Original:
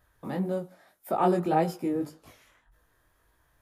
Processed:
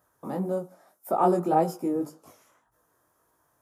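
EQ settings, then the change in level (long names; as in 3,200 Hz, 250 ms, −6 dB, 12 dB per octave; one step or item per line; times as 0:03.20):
high-pass filter 140 Hz 12 dB per octave
low-shelf EQ 260 Hz −4 dB
flat-topped bell 2,700 Hz −10.5 dB
+3.0 dB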